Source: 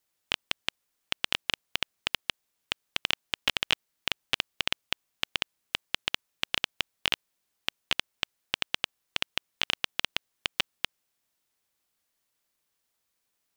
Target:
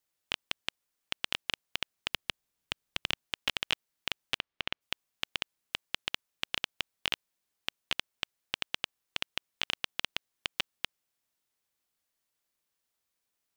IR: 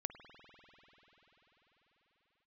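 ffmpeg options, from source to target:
-filter_complex "[0:a]asettb=1/sr,asplit=3[a][b][c];[a]atrim=end=2.104[d];[b]atrim=start=2.1:end=3.25,asetpts=PTS-STARTPTS,afade=t=in:d=0.004:c=qsin,afade=t=out:st=1.146:d=0.004:c=qsin,lowshelf=f=220:g=8.5[e];[c]atrim=start=3.246[f];[d][e]acrossfade=d=0.004:c1=hsin:c2=qsin[g];[g][f]acrossfade=d=0.004:c1=qsin:c2=hsin,asplit=3[h][i][j];[h]afade=t=out:st=4.37:d=0.02[k];[i]lowpass=3.2k,afade=t=in:st=4.37:d=0.02,afade=t=out:st=4.8:d=0.02[l];[j]afade=t=in:st=4.8:d=0.02[m];[k][l][m]amix=inputs=3:normalize=0,volume=-4.5dB"

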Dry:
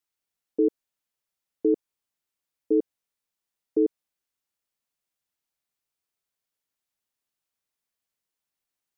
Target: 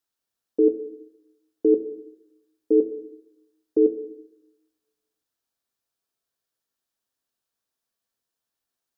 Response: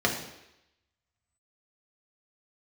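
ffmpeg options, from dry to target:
-filter_complex "[0:a]asplit=2[a][b];[1:a]atrim=start_sample=2205,asetrate=42336,aresample=44100[c];[b][c]afir=irnorm=-1:irlink=0,volume=-16.5dB[d];[a][d]amix=inputs=2:normalize=0"

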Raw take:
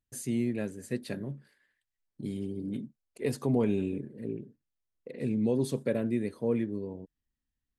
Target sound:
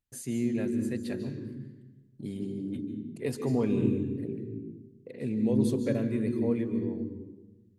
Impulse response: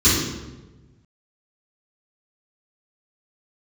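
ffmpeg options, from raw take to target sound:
-filter_complex "[0:a]asplit=2[a][b];[1:a]atrim=start_sample=2205,adelay=137[c];[b][c]afir=irnorm=-1:irlink=0,volume=-28.5dB[d];[a][d]amix=inputs=2:normalize=0,volume=-1.5dB"

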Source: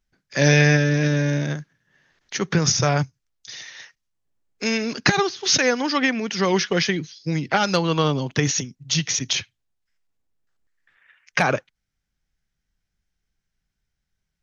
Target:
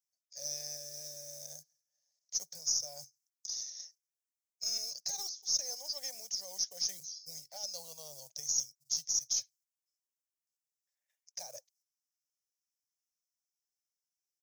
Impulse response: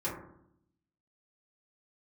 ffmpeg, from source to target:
-filter_complex "[0:a]agate=range=-7dB:threshold=-55dB:ratio=16:detection=peak,acrossover=split=780[a][b];[a]acrusher=bits=6:mode=log:mix=0:aa=0.000001[c];[c][b]amix=inputs=2:normalize=0,firequalizer=gain_entry='entry(150,0);entry(240,-18);entry(350,-18);entry(570,7);entry(1300,-25);entry(1900,-20);entry(2900,-22);entry(5300,6);entry(10000,1)':delay=0.05:min_phase=1,areverse,acompressor=threshold=-29dB:ratio=4,areverse,aderivative,aeval=exprs='0.133*(cos(1*acos(clip(val(0)/0.133,-1,1)))-cos(1*PI/2))+0.00211*(cos(6*acos(clip(val(0)/0.133,-1,1)))-cos(6*PI/2))':c=same"

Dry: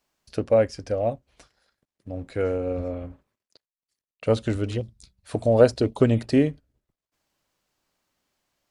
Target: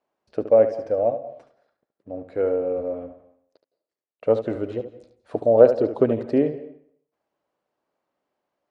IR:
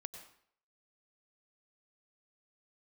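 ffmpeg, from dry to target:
-filter_complex "[0:a]bandpass=f=550:t=q:w=1:csg=0,asplit=2[a][b];[1:a]atrim=start_sample=2205,adelay=72[c];[b][c]afir=irnorm=-1:irlink=0,volume=-5.5dB[d];[a][d]amix=inputs=2:normalize=0,volume=3.5dB"

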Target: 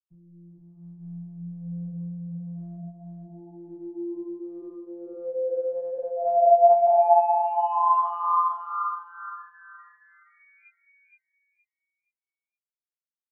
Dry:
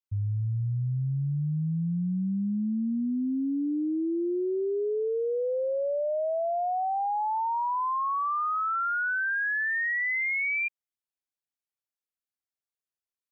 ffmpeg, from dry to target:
-filter_complex "[0:a]highpass=f=85:p=1,aemphasis=mode=reproduction:type=riaa,afftfilt=real='re*gte(hypot(re,im),0.112)':imag='im*gte(hypot(re,im),0.112)':win_size=1024:overlap=0.75,highshelf=f=1.5k:t=q:w=3:g=-13.5,acontrast=51,asplit=3[a][b][c];[a]bandpass=f=730:t=q:w=8,volume=0dB[d];[b]bandpass=f=1.09k:t=q:w=8,volume=-6dB[e];[c]bandpass=f=2.44k:t=q:w=8,volume=-9dB[f];[d][e][f]amix=inputs=3:normalize=0,flanger=delay=18:depth=4.3:speed=2.2,afftfilt=real='hypot(re,im)*cos(PI*b)':imag='0':win_size=1024:overlap=0.75,asplit=2[g][h];[h]aecho=0:1:469|938|1407|1876:0.708|0.184|0.0479|0.0124[i];[g][i]amix=inputs=2:normalize=0,volume=8.5dB"

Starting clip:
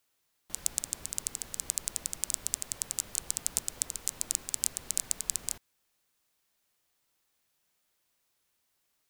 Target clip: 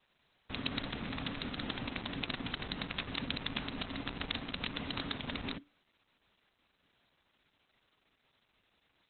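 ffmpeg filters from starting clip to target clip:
-af "aresample=11025,aresample=44100,afreqshift=-290,volume=11.5dB" -ar 48000 -c:a libopus -b:a 8k

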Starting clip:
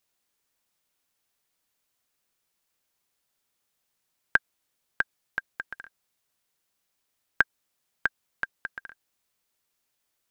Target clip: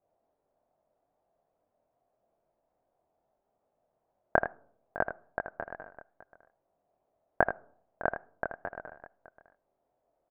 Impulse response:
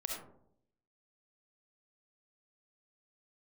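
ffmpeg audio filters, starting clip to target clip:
-filter_complex "[0:a]lowpass=f=670:t=q:w=4.9,aecho=1:1:80|606:0.355|0.15,asplit=2[a][b];[1:a]atrim=start_sample=2205,asetrate=48510,aresample=44100[c];[b][c]afir=irnorm=-1:irlink=0,volume=-21.5dB[d];[a][d]amix=inputs=2:normalize=0,flanger=delay=20:depth=6.5:speed=2.4,volume=8dB"

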